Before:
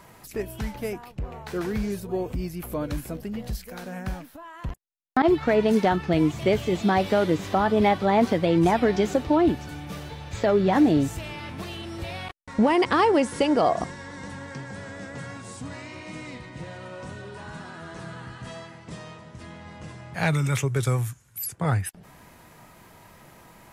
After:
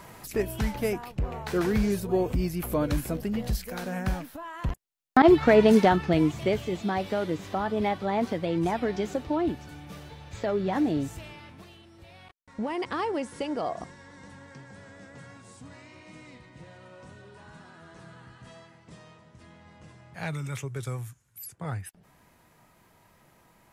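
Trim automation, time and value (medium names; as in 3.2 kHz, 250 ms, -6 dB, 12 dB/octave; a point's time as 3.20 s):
5.68 s +3 dB
6.84 s -7 dB
11.22 s -7 dB
11.92 s -18 dB
12.86 s -10 dB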